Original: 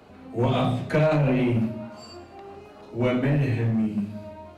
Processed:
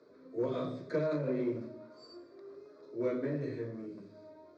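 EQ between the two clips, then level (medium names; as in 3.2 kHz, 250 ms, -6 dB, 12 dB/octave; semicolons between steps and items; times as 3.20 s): Chebyshev band-pass 190–4800 Hz, order 3; peaking EQ 1.4 kHz -13 dB 2.6 oct; static phaser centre 780 Hz, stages 6; 0.0 dB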